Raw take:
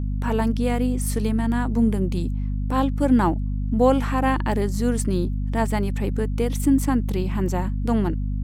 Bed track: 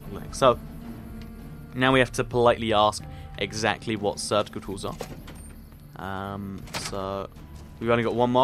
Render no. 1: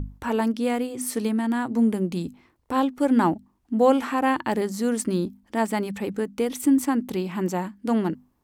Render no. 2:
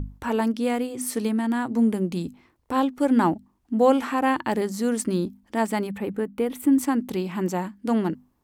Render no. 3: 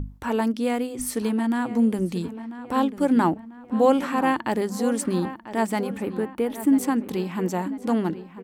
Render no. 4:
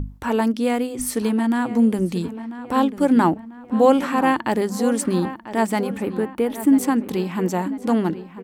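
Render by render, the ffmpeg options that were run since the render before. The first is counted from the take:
ffmpeg -i in.wav -af "bandreject=frequency=50:width_type=h:width=6,bandreject=frequency=100:width_type=h:width=6,bandreject=frequency=150:width_type=h:width=6,bandreject=frequency=200:width_type=h:width=6,bandreject=frequency=250:width_type=h:width=6" out.wav
ffmpeg -i in.wav -filter_complex "[0:a]asettb=1/sr,asplit=3[link_01][link_02][link_03];[link_01]atrim=end=5.874[link_04];[link_02]atrim=start=5.87:end=6.73,asetpts=PTS-STARTPTS,afade=type=in:duration=0.004:curve=qsin,afade=type=out:start_time=0.856:duration=0.004:curve=qsin,equalizer=frequency=5900:width_type=o:width=1.3:gain=-13[link_05];[link_03]atrim=start=6.726[link_06];[link_04][link_05]acrossfade=duration=0.004:curve1=hsin:curve2=qsin[link_07];[link_07][link_06]acrossfade=duration=0.004:curve1=qsin:curve2=hsin" out.wav
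ffmpeg -i in.wav -filter_complex "[0:a]asplit=2[link_01][link_02];[link_02]adelay=993,lowpass=frequency=3000:poles=1,volume=-13dB,asplit=2[link_03][link_04];[link_04]adelay=993,lowpass=frequency=3000:poles=1,volume=0.48,asplit=2[link_05][link_06];[link_06]adelay=993,lowpass=frequency=3000:poles=1,volume=0.48,asplit=2[link_07][link_08];[link_08]adelay=993,lowpass=frequency=3000:poles=1,volume=0.48,asplit=2[link_09][link_10];[link_10]adelay=993,lowpass=frequency=3000:poles=1,volume=0.48[link_11];[link_01][link_03][link_05][link_07][link_09][link_11]amix=inputs=6:normalize=0" out.wav
ffmpeg -i in.wav -af "volume=3.5dB" out.wav

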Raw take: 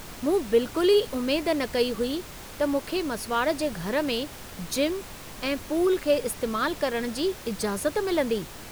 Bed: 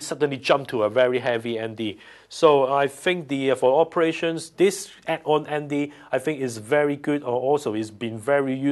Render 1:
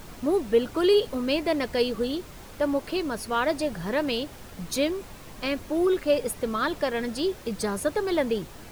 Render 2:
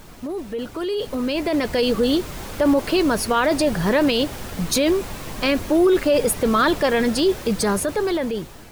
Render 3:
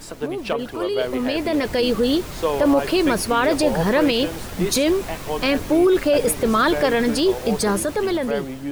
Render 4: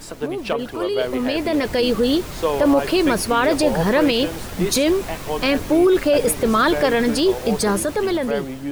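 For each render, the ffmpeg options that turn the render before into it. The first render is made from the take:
ffmpeg -i in.wav -af "afftdn=noise_reduction=6:noise_floor=-42" out.wav
ffmpeg -i in.wav -af "alimiter=limit=-21.5dB:level=0:latency=1:release=11,dynaudnorm=framelen=410:gausssize=7:maxgain=11.5dB" out.wav
ffmpeg -i in.wav -i bed.wav -filter_complex "[1:a]volume=-6.5dB[link_01];[0:a][link_01]amix=inputs=2:normalize=0" out.wav
ffmpeg -i in.wav -af "volume=1dB" out.wav

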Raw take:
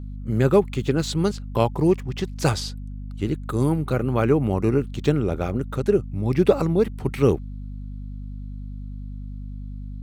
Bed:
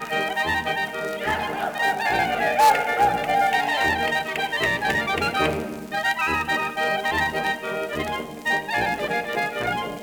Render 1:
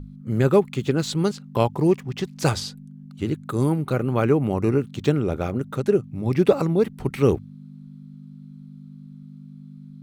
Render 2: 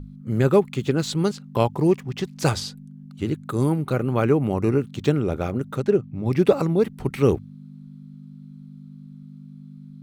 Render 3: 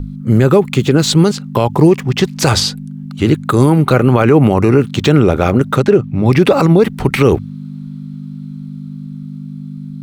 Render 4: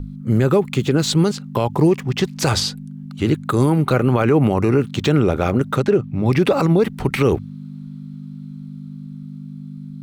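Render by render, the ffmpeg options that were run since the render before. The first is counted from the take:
ffmpeg -i in.wav -af "bandreject=frequency=50:width_type=h:width=6,bandreject=frequency=100:width_type=h:width=6" out.wav
ffmpeg -i in.wav -filter_complex "[0:a]asplit=3[link_01][link_02][link_03];[link_01]afade=type=out:start_time=5.82:duration=0.02[link_04];[link_02]adynamicsmooth=sensitivity=5.5:basefreq=4700,afade=type=in:start_time=5.82:duration=0.02,afade=type=out:start_time=6.25:duration=0.02[link_05];[link_03]afade=type=in:start_time=6.25:duration=0.02[link_06];[link_04][link_05][link_06]amix=inputs=3:normalize=0" out.wav
ffmpeg -i in.wav -filter_complex "[0:a]acrossover=split=630|5400[link_01][link_02][link_03];[link_02]dynaudnorm=framelen=520:gausssize=9:maxgain=4dB[link_04];[link_01][link_04][link_03]amix=inputs=3:normalize=0,alimiter=level_in=14.5dB:limit=-1dB:release=50:level=0:latency=1" out.wav
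ffmpeg -i in.wav -af "volume=-6dB" out.wav

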